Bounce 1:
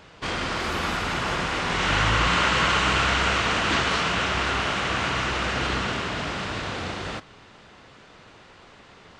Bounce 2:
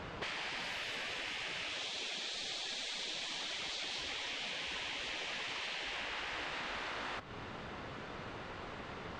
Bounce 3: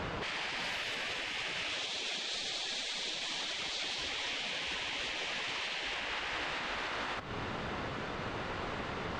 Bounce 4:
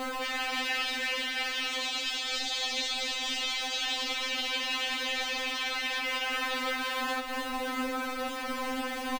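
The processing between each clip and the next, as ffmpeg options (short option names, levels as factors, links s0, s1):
-af "lowpass=f=2500:p=1,afftfilt=real='re*lt(hypot(re,im),0.0631)':imag='im*lt(hypot(re,im),0.0631)':win_size=1024:overlap=0.75,acompressor=threshold=0.00631:ratio=5,volume=1.78"
-af "alimiter=level_in=3.76:limit=0.0631:level=0:latency=1:release=107,volume=0.266,volume=2.37"
-filter_complex "[0:a]acrossover=split=1700[s0][s1];[s0]acrusher=bits=2:mode=log:mix=0:aa=0.000001[s2];[s2][s1]amix=inputs=2:normalize=0,aecho=1:1:290:0.398,afftfilt=real='re*3.46*eq(mod(b,12),0)':imag='im*3.46*eq(mod(b,12),0)':win_size=2048:overlap=0.75,volume=2.24"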